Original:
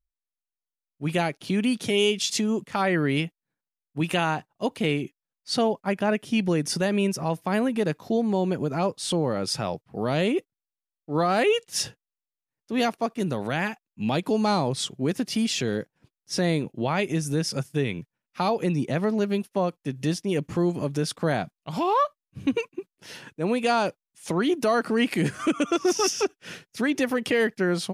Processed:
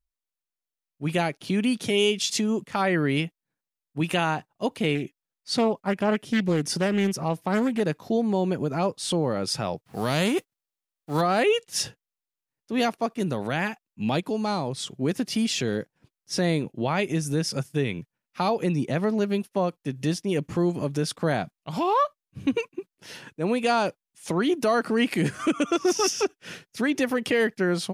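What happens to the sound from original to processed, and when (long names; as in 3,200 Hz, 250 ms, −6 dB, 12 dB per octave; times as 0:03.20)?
0:04.95–0:07.80: highs frequency-modulated by the lows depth 0.27 ms
0:09.82–0:11.20: spectral envelope flattened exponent 0.6
0:14.21–0:14.87: clip gain −4 dB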